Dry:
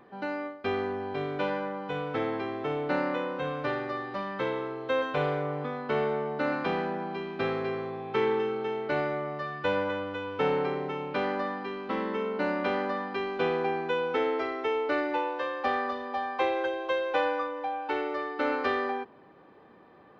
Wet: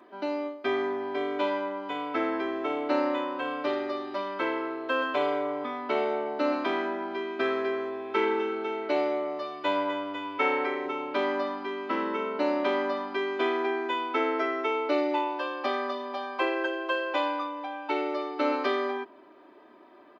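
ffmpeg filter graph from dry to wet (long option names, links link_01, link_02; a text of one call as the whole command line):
ffmpeg -i in.wav -filter_complex "[0:a]asettb=1/sr,asplit=3[link_01][link_02][link_03];[link_01]atrim=end=10.384[link_04];[link_02]atrim=start=10.38:end=10.86,asetpts=PTS-STARTPTS,afade=type=in:duration=0.004:curve=qsin,afade=type=out:start_time=0.476:duration=0.004:curve=qsin,highpass=frequency=230:poles=1,equalizer=frequency=2100:width=6.4:gain=11[link_05];[link_03]atrim=start=10.856[link_06];[link_04][link_05]acrossfade=duration=0.004:curve1=hsin:curve2=qsin[link_07];[link_07][link_06]acrossfade=duration=0.004:curve1=qsin:curve2=hsin,highpass=260,aecho=1:1:3.1:0.95" out.wav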